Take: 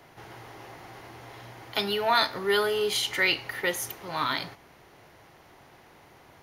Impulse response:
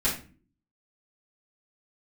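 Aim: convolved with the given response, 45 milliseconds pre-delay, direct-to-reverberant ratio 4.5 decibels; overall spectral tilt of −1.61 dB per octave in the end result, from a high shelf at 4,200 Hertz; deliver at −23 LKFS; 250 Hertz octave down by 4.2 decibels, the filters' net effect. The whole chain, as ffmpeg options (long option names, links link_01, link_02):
-filter_complex "[0:a]equalizer=frequency=250:width_type=o:gain=-7,highshelf=frequency=4200:gain=9,asplit=2[link_01][link_02];[1:a]atrim=start_sample=2205,adelay=45[link_03];[link_02][link_03]afir=irnorm=-1:irlink=0,volume=-14.5dB[link_04];[link_01][link_04]amix=inputs=2:normalize=0,volume=0.5dB"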